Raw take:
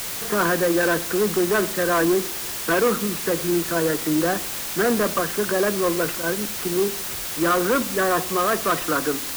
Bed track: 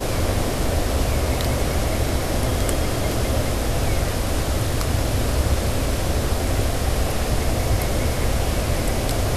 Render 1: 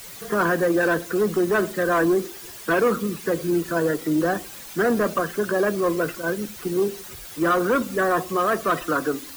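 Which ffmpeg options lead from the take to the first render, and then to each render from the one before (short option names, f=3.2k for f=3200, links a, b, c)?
-af "afftdn=nr=12:nf=-30"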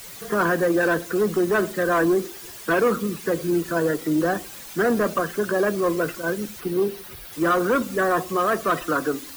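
-filter_complex "[0:a]asettb=1/sr,asplit=3[a][b][c];[a]atrim=end=6.604[d];[b]atrim=start=6.6:end=7.33,asetpts=PTS-STARTPTS,afade=t=in:d=0.004:c=qsin,afade=t=out:st=0.726:d=0.004:c=qsin,equalizer=f=7.1k:t=o:w=0.67:g=-8.5[e];[c]atrim=start=7.326[f];[d][e]acrossfade=d=0.004:c1=hsin:c2=qsin[g];[g][f]acrossfade=d=0.004:c1=qsin:c2=hsin"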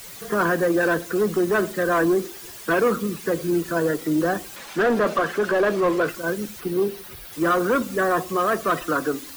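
-filter_complex "[0:a]asettb=1/sr,asplit=3[a][b][c];[a]atrim=end=4.564[d];[b]atrim=start=4.56:end=6.09,asetpts=PTS-STARTPTS,afade=t=in:d=0.004:c=qsin,afade=t=out:st=1.526:d=0.004:c=qsin,asplit=2[e][f];[f]highpass=f=720:p=1,volume=16dB,asoftclip=type=tanh:threshold=-12dB[g];[e][g]amix=inputs=2:normalize=0,lowpass=f=1.7k:p=1,volume=-6dB[h];[c]atrim=start=6.086[i];[d][h]acrossfade=d=0.004:c1=hsin:c2=qsin[j];[j][i]acrossfade=d=0.004:c1=qsin:c2=hsin"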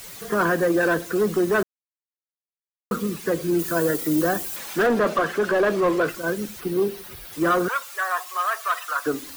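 -filter_complex "[0:a]asettb=1/sr,asplit=3[a][b][c];[a]atrim=end=3.594[d];[b]atrim=start=3.59:end=4.87,asetpts=PTS-STARTPTS,afade=t=in:d=0.004:c=qsin,afade=t=out:st=1.276:d=0.004:c=qsin,highshelf=f=7.8k:g=11[e];[c]atrim=start=4.866[f];[d][e]acrossfade=d=0.004:c1=hsin:c2=qsin[g];[g][f]acrossfade=d=0.004:c1=qsin:c2=hsin,asettb=1/sr,asplit=3[h][i][j];[h]atrim=end=7.684[k];[i]atrim=start=7.68:end=9.06,asetpts=PTS-STARTPTS,afade=t=in:d=0.004:c=qsin,afade=t=out:st=1.376:d=0.004:c=qsin,highpass=f=830:w=0.5412,highpass=f=830:w=1.3066[l];[j]atrim=start=9.056[m];[k][l]acrossfade=d=0.004:c1=hsin:c2=qsin[n];[n][m]acrossfade=d=0.004:c1=qsin:c2=hsin,asplit=3[o][p][q];[o]atrim=end=1.63,asetpts=PTS-STARTPTS,afade=t=out:st=1.626:d=0.004:c=hsin[r];[p]atrim=start=1.63:end=2.91,asetpts=PTS-STARTPTS,volume=0[s];[q]atrim=start=2.91,asetpts=PTS-STARTPTS,afade=t=in:d=0.004:c=hsin[t];[r][s][t]concat=n=3:v=0:a=1"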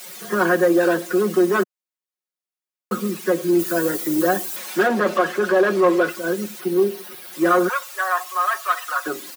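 -af "highpass=f=200:w=0.5412,highpass=f=200:w=1.3066,aecho=1:1:5.5:0.83"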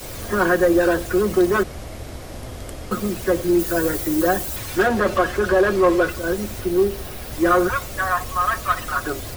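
-filter_complex "[1:a]volume=-12.5dB[a];[0:a][a]amix=inputs=2:normalize=0"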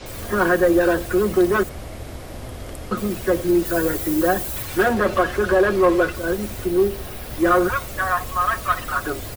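-filter_complex "[0:a]acrossover=split=6000[a][b];[b]adelay=60[c];[a][c]amix=inputs=2:normalize=0"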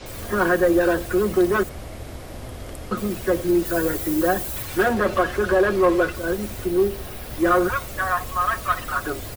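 -af "volume=-1.5dB"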